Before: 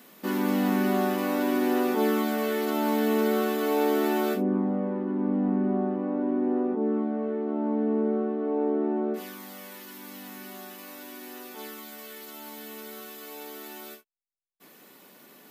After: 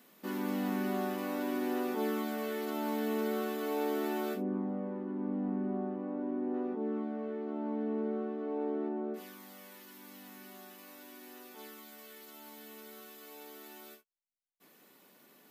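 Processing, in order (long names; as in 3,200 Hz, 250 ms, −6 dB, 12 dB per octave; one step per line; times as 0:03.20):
0:06.54–0:08.89: high-shelf EQ 2,400 Hz +11 dB
level −9 dB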